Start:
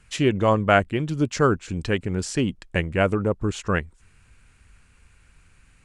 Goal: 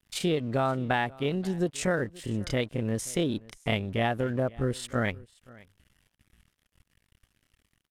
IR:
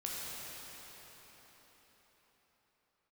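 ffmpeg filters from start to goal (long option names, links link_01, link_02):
-af "acompressor=threshold=-20dB:ratio=20,asetrate=72056,aresample=44100,atempo=0.612027,aeval=exprs='sgn(val(0))*max(abs(val(0))-0.00251,0)':channel_layout=same,asetrate=32634,aresample=44100,aecho=1:1:529:0.0708,volume=-2dB"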